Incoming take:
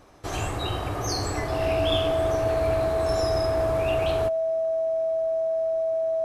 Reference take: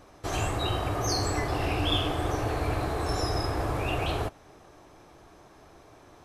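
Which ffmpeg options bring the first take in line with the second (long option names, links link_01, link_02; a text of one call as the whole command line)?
ffmpeg -i in.wav -af "bandreject=frequency=650:width=30" out.wav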